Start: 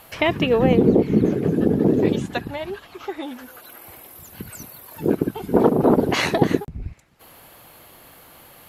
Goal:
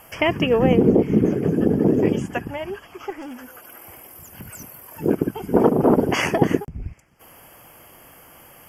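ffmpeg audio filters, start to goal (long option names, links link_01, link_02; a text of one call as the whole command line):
ffmpeg -i in.wav -filter_complex "[0:a]asettb=1/sr,asplit=3[link_01][link_02][link_03];[link_01]atrim=end=3.104[link_04];[link_02]atrim=start=3.1:end=4.63,asetpts=PTS-STARTPTS,afade=type=in:duration=0.004:curve=qsin,afade=type=out:start_time=1.526:duration=0.004:curve=qsin,asoftclip=type=hard:threshold=-31.5dB[link_05];[link_03]atrim=start=4.626[link_06];[link_04][link_05]acrossfade=duration=0.004:curve1=hsin:curve2=qsin[link_07];[link_07][link_06]acrossfade=duration=0.004:curve1=qsin:curve2=hsin,asuperstop=centerf=3900:order=12:qfactor=3" out.wav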